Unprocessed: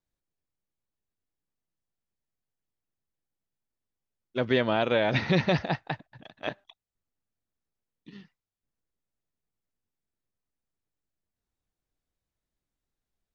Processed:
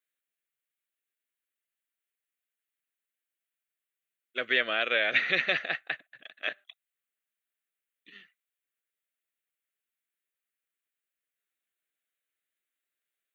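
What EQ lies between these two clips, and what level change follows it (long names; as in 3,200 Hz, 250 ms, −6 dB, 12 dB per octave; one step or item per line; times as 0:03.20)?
high-pass filter 880 Hz 12 dB per octave
phaser with its sweep stopped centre 2,200 Hz, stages 4
+7.0 dB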